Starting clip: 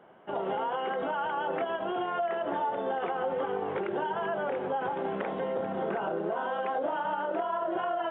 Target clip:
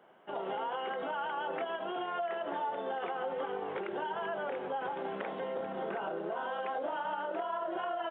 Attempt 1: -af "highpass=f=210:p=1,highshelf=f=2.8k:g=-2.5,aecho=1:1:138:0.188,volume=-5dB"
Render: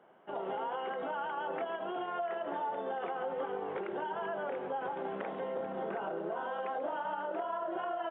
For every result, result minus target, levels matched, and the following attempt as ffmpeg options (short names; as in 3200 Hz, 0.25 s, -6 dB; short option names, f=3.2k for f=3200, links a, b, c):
echo-to-direct +8.5 dB; 4000 Hz band -4.5 dB
-af "highpass=f=210:p=1,highshelf=f=2.8k:g=-2.5,aecho=1:1:138:0.0708,volume=-5dB"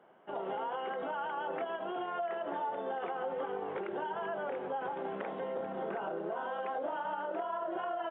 4000 Hz band -4.5 dB
-af "highpass=f=210:p=1,highshelf=f=2.8k:g=7,aecho=1:1:138:0.0708,volume=-5dB"